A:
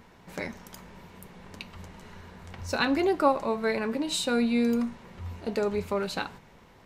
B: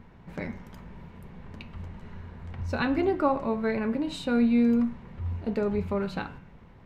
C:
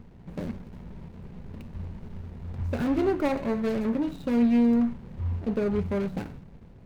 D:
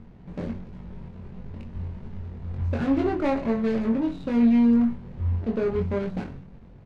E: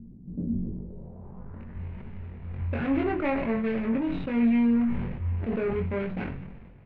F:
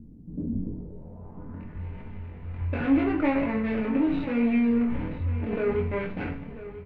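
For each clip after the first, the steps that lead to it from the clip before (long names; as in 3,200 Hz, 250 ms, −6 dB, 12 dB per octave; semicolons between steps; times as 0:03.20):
bass and treble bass +10 dB, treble −14 dB; hum removal 92.17 Hz, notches 39; level −2 dB
running median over 41 samples; in parallel at −7.5 dB: hard clipping −29 dBFS, distortion −7 dB
high-frequency loss of the air 80 metres; double-tracking delay 22 ms −3 dB
low-pass filter sweep 250 Hz → 2,400 Hz, 0:00.58–0:01.84; level that may fall only so fast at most 37 dB per second; level −4 dB
single-tap delay 992 ms −14.5 dB; feedback delay network reverb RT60 0.36 s, low-frequency decay 0.8×, high-frequency decay 0.85×, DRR 3 dB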